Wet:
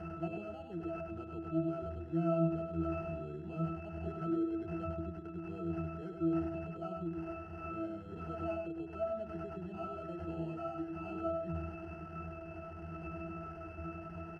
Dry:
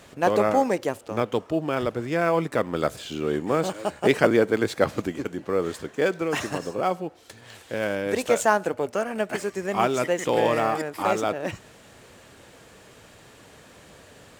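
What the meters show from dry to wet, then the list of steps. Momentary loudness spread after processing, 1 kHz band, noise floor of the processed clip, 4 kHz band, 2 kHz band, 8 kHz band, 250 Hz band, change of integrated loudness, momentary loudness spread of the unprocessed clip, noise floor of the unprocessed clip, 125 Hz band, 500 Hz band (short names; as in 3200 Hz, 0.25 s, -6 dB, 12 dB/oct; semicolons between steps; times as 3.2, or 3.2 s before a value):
10 LU, -17.5 dB, -47 dBFS, under -25 dB, -23.0 dB, under -35 dB, -9.0 dB, -14.5 dB, 9 LU, -51 dBFS, -5.0 dB, -16.5 dB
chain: switching spikes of -21.5 dBFS; reverb removal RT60 1.9 s; low shelf 170 Hz +8 dB; transient shaper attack -7 dB, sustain +2 dB; compressor 4:1, threshold -27 dBFS, peak gain reduction 10 dB; sample-and-hold 12×; octave resonator E, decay 0.35 s; echo 0.1 s -5 dB; gain +5.5 dB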